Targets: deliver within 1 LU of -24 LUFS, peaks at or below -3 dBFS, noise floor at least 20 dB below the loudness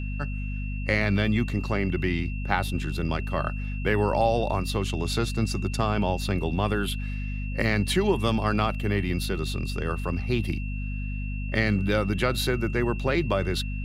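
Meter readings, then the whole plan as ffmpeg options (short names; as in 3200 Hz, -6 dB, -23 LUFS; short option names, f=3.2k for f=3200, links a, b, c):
hum 50 Hz; harmonics up to 250 Hz; hum level -28 dBFS; steady tone 2700 Hz; tone level -41 dBFS; loudness -27.0 LUFS; peak -8.0 dBFS; loudness target -24.0 LUFS
-> -af "bandreject=f=50:t=h:w=4,bandreject=f=100:t=h:w=4,bandreject=f=150:t=h:w=4,bandreject=f=200:t=h:w=4,bandreject=f=250:t=h:w=4"
-af "bandreject=f=2.7k:w=30"
-af "volume=3dB"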